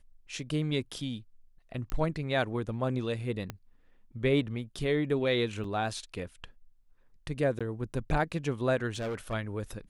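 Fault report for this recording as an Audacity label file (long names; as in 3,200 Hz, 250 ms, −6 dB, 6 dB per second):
1.900000	1.900000	click −20 dBFS
3.500000	3.500000	click −21 dBFS
5.640000	5.640000	drop-out 3.6 ms
7.590000	7.610000	drop-out 16 ms
8.950000	9.340000	clipping −30.5 dBFS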